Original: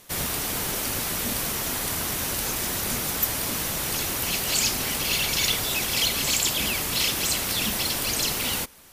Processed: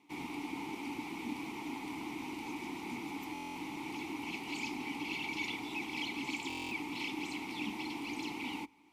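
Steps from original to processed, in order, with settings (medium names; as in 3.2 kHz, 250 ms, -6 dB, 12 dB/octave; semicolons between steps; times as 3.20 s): vowel filter u; hum notches 50/100 Hz; buffer glitch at 3.33/6.48 s, samples 1024, times 9; trim +3.5 dB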